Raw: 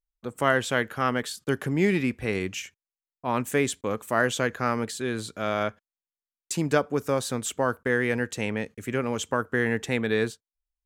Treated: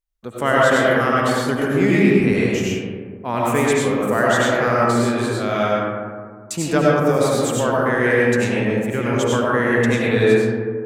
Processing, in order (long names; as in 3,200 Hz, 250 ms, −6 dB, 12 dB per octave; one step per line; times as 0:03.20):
comb and all-pass reverb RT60 2 s, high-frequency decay 0.3×, pre-delay 55 ms, DRR −5.5 dB
level +2 dB